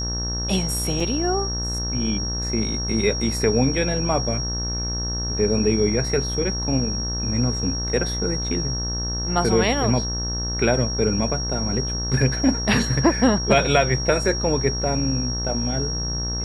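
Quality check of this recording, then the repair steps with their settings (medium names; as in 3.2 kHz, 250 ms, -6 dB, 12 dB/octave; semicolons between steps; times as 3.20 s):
buzz 60 Hz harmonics 31 -28 dBFS
whine 5.6 kHz -27 dBFS
1.00 s: dropout 4 ms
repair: de-hum 60 Hz, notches 31; band-stop 5.6 kHz, Q 30; interpolate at 1.00 s, 4 ms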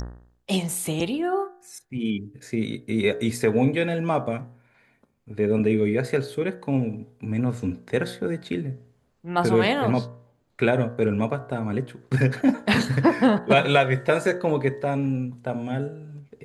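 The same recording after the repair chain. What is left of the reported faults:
nothing left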